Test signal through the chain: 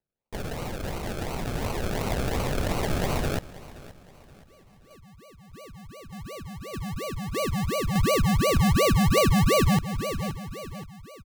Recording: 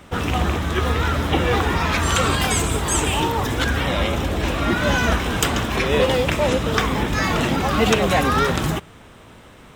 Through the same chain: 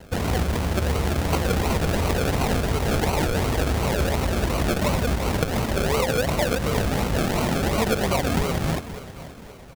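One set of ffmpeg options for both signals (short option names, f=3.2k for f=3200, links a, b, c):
-af "dynaudnorm=f=180:g=21:m=7dB,aresample=32000,aresample=44100,acrusher=samples=36:mix=1:aa=0.000001:lfo=1:lforange=21.6:lforate=2.8,equalizer=f=300:w=2.7:g=-4.5,aecho=1:1:524|1048|1572:0.126|0.0504|0.0201,acompressor=threshold=-18dB:ratio=12"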